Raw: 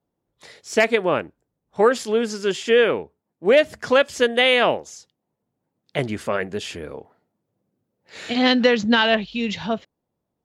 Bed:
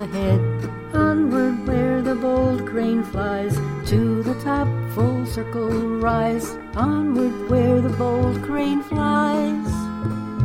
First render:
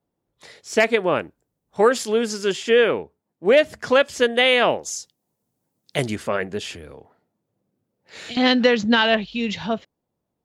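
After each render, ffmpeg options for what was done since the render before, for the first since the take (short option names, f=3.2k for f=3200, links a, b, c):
-filter_complex "[0:a]asettb=1/sr,asplit=3[a][b][c];[a]atrim=end=1.164[d];[b]atrim=start=1.16:end=2.53,asetpts=PTS-STARTPTS,afade=t=in:d=0.004:c=qsin,afade=t=out:st=1.366:d=0.004:c=qsin,highshelf=f=5.3k:g=6.5[e];[c]atrim=start=2.526[f];[d][e]acrossfade=d=0.004:c1=hsin:c2=qsin[g];[g][f]acrossfade=d=0.004:c1=qsin:c2=hsin,asettb=1/sr,asplit=3[h][i][j];[h]atrim=end=4.834[k];[i]atrim=start=4.83:end=6.16,asetpts=PTS-STARTPTS,afade=t=in:d=0.004:c=qsin,afade=t=out:st=1.326:d=0.004:c=qsin,bass=f=250:g=1,treble=f=4k:g=13[l];[j]atrim=start=6.156[m];[k][l]acrossfade=d=0.004:c1=hsin:c2=qsin[n];[n][m]acrossfade=d=0.004:c1=qsin:c2=hsin,asettb=1/sr,asplit=3[o][p][q];[o]atrim=end=6.734[r];[p]atrim=start=6.73:end=8.37,asetpts=PTS-STARTPTS,afade=t=in:d=0.004:c=qsin,afade=t=out:st=1.636:d=0.004:c=qsin,acrossover=split=130|3000[s][t][u];[t]acompressor=threshold=-37dB:ratio=6:attack=3.2:release=140:knee=2.83:detection=peak[v];[s][v][u]amix=inputs=3:normalize=0[w];[q]atrim=start=8.366[x];[r][w]acrossfade=d=0.004:c1=hsin:c2=qsin[y];[y][x]acrossfade=d=0.004:c1=qsin:c2=hsin"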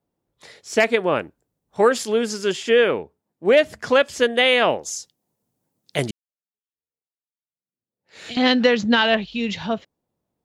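-filter_complex "[0:a]asplit=2[a][b];[a]atrim=end=6.11,asetpts=PTS-STARTPTS,afade=t=out:st=6.106:d=0.004:c=hsin[c];[b]atrim=start=6.11,asetpts=PTS-STARTPTS,afade=t=in:d=2.17:c=exp[d];[c][d]concat=n=2:v=0:a=1"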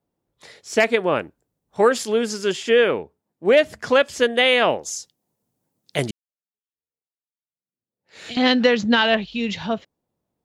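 -af anull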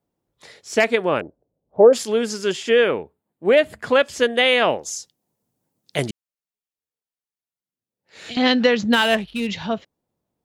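-filter_complex "[0:a]asettb=1/sr,asplit=3[a][b][c];[a]atrim=end=1.214[d];[b]atrim=start=1.21:end=1.93,asetpts=PTS-STARTPTS,afade=t=in:d=0.004:c=qsin,afade=t=out:st=0.716:d=0.004:c=qsin,lowpass=f=600:t=q:w=2.5[e];[c]atrim=start=1.926[f];[d][e]acrossfade=d=0.004:c1=hsin:c2=qsin[g];[g][f]acrossfade=d=0.004:c1=qsin:c2=hsin,asettb=1/sr,asplit=3[h][i][j];[h]atrim=end=2.894[k];[i]atrim=start=2.89:end=3.99,asetpts=PTS-STARTPTS,afade=t=in:d=0.004:c=qsin,afade=t=out:st=1.096:d=0.004:c=qsin,equalizer=f=5.7k:t=o:w=0.43:g=-12.5[l];[j]atrim=start=3.986[m];[k][l]acrossfade=d=0.004:c1=hsin:c2=qsin[n];[n][m]acrossfade=d=0.004:c1=qsin:c2=hsin,asettb=1/sr,asplit=3[o][p][q];[o]atrim=end=8.934[r];[p]atrim=start=8.93:end=9.47,asetpts=PTS-STARTPTS,afade=t=in:d=0.004:c=qsin,afade=t=out:st=0.536:d=0.004:c=qsin,adynamicsmooth=sensitivity=6.5:basefreq=1.9k[s];[q]atrim=start=9.466[t];[r][s]acrossfade=d=0.004:c1=hsin:c2=qsin[u];[u][t]acrossfade=d=0.004:c1=qsin:c2=hsin"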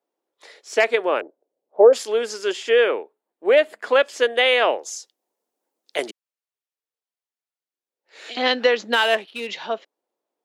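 -af "highpass=f=350:w=0.5412,highpass=f=350:w=1.3066,highshelf=f=6.2k:g=-6"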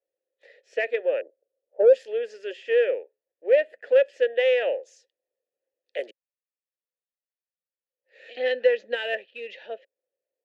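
-filter_complex "[0:a]asplit=3[a][b][c];[a]bandpass=f=530:t=q:w=8,volume=0dB[d];[b]bandpass=f=1.84k:t=q:w=8,volume=-6dB[e];[c]bandpass=f=2.48k:t=q:w=8,volume=-9dB[f];[d][e][f]amix=inputs=3:normalize=0,asplit=2[g][h];[h]asoftclip=type=tanh:threshold=-20.5dB,volume=-10dB[i];[g][i]amix=inputs=2:normalize=0"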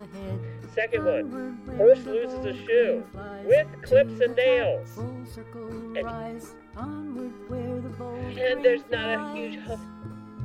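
-filter_complex "[1:a]volume=-15dB[a];[0:a][a]amix=inputs=2:normalize=0"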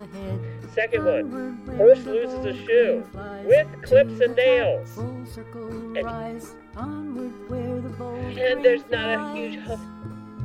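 -af "volume=3dB"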